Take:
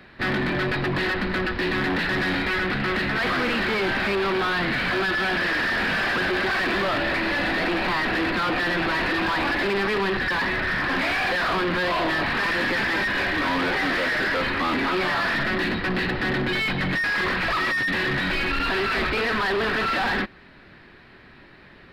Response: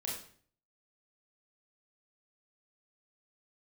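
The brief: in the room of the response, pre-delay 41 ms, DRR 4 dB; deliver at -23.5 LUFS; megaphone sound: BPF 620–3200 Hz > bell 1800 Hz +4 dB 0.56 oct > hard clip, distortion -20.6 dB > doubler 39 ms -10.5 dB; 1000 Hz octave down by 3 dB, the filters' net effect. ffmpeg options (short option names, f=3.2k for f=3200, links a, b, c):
-filter_complex "[0:a]equalizer=f=1k:t=o:g=-4,asplit=2[a][b];[1:a]atrim=start_sample=2205,adelay=41[c];[b][c]afir=irnorm=-1:irlink=0,volume=-5.5dB[d];[a][d]amix=inputs=2:normalize=0,highpass=620,lowpass=3.2k,equalizer=f=1.8k:t=o:w=0.56:g=4,asoftclip=type=hard:threshold=-18dB,asplit=2[e][f];[f]adelay=39,volume=-10.5dB[g];[e][g]amix=inputs=2:normalize=0,volume=-1.5dB"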